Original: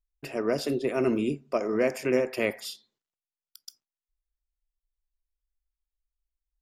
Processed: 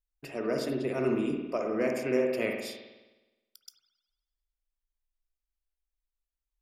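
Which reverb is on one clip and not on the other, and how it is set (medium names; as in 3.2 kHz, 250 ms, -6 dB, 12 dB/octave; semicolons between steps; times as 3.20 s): spring tank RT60 1.1 s, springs 52 ms, chirp 50 ms, DRR 2.5 dB; trim -5 dB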